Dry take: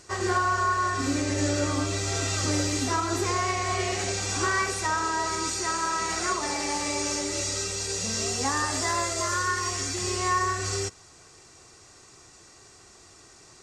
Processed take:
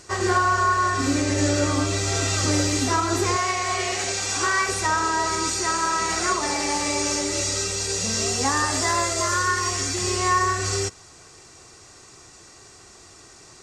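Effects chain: 3.36–4.69 s: bass shelf 370 Hz -9.5 dB; trim +4.5 dB

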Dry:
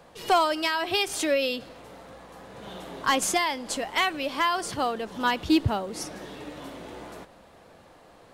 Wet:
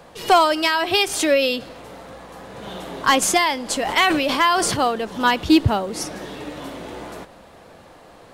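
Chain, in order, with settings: 3.81–4.88 s: decay stretcher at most 30 dB/s; trim +7 dB

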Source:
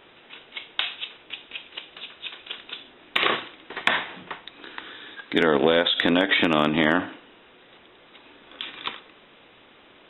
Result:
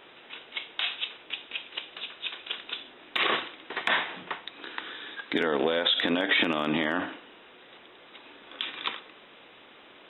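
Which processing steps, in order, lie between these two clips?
peak limiter -14 dBFS, peak gain reduction 9 dB; bass shelf 150 Hz -10.5 dB; trim +1 dB

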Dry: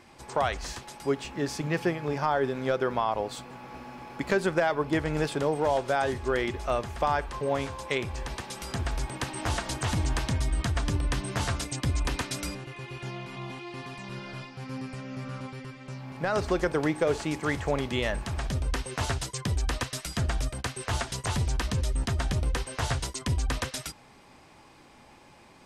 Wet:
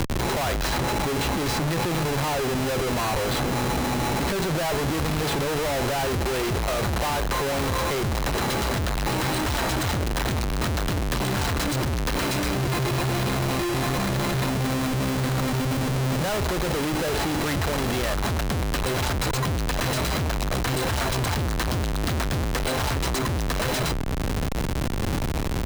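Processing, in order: whistle 4 kHz -40 dBFS; Schmitt trigger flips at -37.5 dBFS; three bands compressed up and down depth 70%; trim +4.5 dB

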